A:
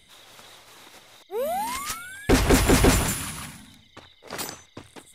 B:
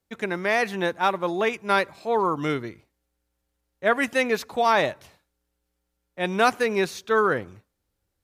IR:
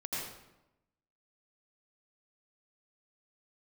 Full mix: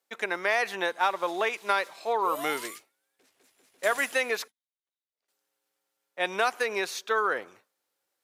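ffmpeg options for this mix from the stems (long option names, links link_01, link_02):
-filter_complex "[0:a]aeval=exprs='if(lt(val(0),0),0.708*val(0),val(0))':channel_layout=same,equalizer=frequency=990:width_type=o:width=1.7:gain=-9,adelay=900,volume=-1dB,afade=type=out:start_time=2.45:duration=0.52:silence=0.316228,afade=type=out:start_time=4.11:duration=0.52:silence=0.375837[link_01];[1:a]acompressor=threshold=-22dB:ratio=6,volume=2dB,asplit=3[link_02][link_03][link_04];[link_02]atrim=end=4.48,asetpts=PTS-STARTPTS,afade=type=out:start_time=4.476:duration=0.004:curve=hsin[link_05];[link_03]atrim=start=4.48:end=5.28,asetpts=PTS-STARTPTS,volume=0[link_06];[link_04]atrim=start=5.28,asetpts=PTS-STARTPTS,afade=type=in:duration=0.004:curve=hsin[link_07];[link_05][link_06][link_07]concat=n=3:v=0:a=1,asplit=2[link_08][link_09];[link_09]apad=whole_len=266662[link_10];[link_01][link_10]sidechaingate=range=-27dB:threshold=-39dB:ratio=16:detection=peak[link_11];[link_11][link_08]amix=inputs=2:normalize=0,highpass=550"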